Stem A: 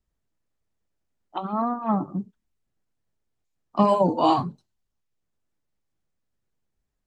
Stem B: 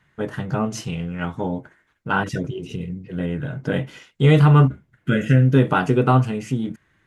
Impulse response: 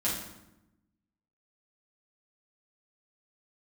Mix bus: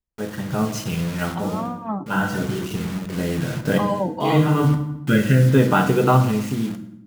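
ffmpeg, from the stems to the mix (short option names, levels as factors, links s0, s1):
-filter_complex "[0:a]volume=0.335,asplit=2[s0][s1];[1:a]acrusher=bits=5:mix=0:aa=0.000001,volume=0.501,asplit=2[s2][s3];[s3]volume=0.282[s4];[s1]apad=whole_len=311458[s5];[s2][s5]sidechaincompress=threshold=0.00501:ratio=8:attack=16:release=295[s6];[2:a]atrim=start_sample=2205[s7];[s4][s7]afir=irnorm=-1:irlink=0[s8];[s0][s6][s8]amix=inputs=3:normalize=0,dynaudnorm=f=140:g=9:m=2"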